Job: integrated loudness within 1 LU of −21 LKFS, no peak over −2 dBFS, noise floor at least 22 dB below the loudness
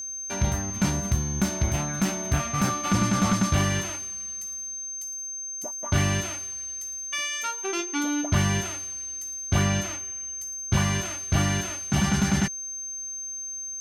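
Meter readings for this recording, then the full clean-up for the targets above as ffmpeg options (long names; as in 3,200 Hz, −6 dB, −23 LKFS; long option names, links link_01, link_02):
interfering tone 6,300 Hz; level of the tone −32 dBFS; integrated loudness −26.5 LKFS; sample peak −11.5 dBFS; target loudness −21.0 LKFS
→ -af "bandreject=frequency=6300:width=30"
-af "volume=5.5dB"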